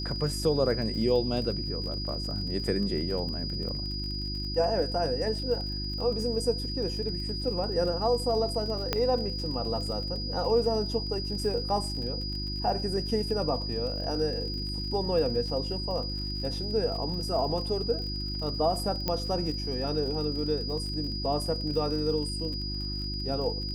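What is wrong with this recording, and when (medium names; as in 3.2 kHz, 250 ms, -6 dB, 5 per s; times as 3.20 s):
crackle 49 per s -37 dBFS
hum 50 Hz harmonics 7 -35 dBFS
whine 4.9 kHz -35 dBFS
8.93 s: pop -11 dBFS
19.08 s: pop -14 dBFS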